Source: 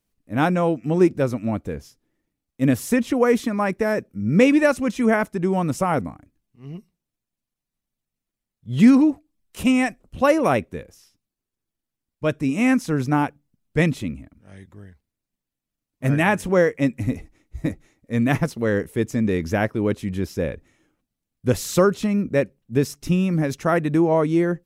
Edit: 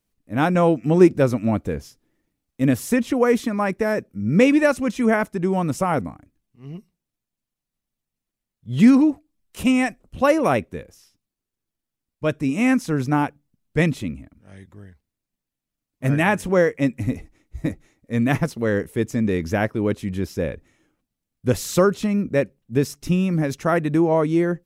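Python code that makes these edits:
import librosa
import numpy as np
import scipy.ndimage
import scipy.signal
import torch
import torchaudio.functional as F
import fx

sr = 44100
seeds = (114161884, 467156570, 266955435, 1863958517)

y = fx.edit(x, sr, fx.clip_gain(start_s=0.55, length_s=2.07, db=3.5), tone=tone)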